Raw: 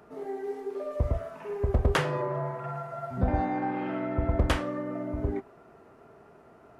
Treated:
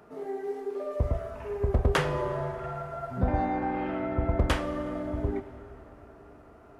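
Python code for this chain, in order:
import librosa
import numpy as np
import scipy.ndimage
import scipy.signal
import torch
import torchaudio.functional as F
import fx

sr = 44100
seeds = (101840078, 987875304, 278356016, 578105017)

y = fx.rev_plate(x, sr, seeds[0], rt60_s=4.6, hf_ratio=0.6, predelay_ms=0, drr_db=12.5)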